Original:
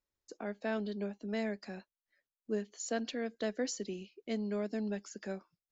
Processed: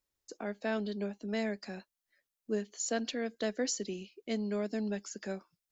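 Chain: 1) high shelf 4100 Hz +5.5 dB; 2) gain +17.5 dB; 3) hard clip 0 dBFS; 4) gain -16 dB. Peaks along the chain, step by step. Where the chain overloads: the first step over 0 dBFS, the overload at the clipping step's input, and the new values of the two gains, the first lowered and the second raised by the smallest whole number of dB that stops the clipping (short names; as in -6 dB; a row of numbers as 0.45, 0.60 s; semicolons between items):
-21.5, -4.0, -4.0, -20.0 dBFS; no overload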